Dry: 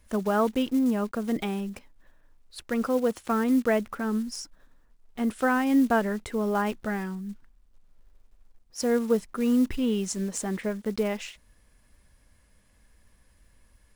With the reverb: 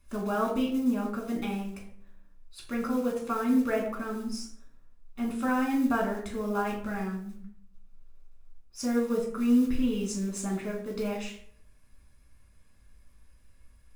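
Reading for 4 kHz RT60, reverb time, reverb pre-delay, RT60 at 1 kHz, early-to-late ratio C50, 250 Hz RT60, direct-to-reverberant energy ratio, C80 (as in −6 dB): 0.40 s, 0.65 s, 4 ms, 0.60 s, 6.5 dB, 0.80 s, −2.5 dB, 10.0 dB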